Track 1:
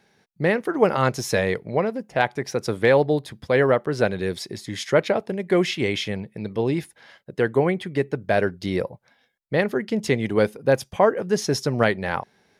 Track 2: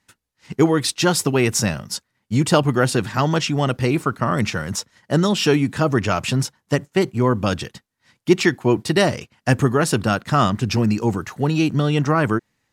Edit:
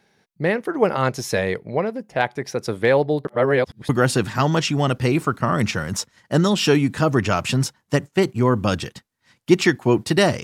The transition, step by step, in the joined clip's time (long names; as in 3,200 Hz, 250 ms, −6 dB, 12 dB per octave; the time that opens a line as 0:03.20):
track 1
0:03.25–0:03.89: reverse
0:03.89: continue with track 2 from 0:02.68